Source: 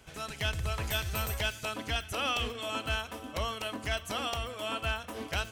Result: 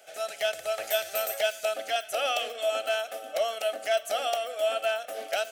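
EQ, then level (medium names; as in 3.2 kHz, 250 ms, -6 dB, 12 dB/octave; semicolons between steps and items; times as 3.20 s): resonant high-pass 630 Hz, resonance Q 4.9; Butterworth band-stop 1 kHz, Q 2.5; treble shelf 6.3 kHz +7 dB; 0.0 dB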